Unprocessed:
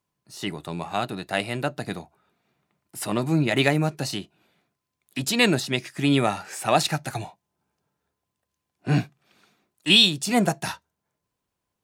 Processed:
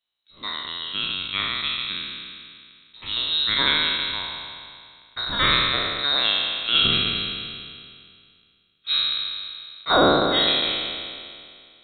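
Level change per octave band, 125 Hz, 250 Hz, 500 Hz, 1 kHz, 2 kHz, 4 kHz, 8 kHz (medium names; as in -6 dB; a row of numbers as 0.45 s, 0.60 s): -10.0 dB, -6.5 dB, 0.0 dB, +2.0 dB, +2.5 dB, +6.0 dB, under -40 dB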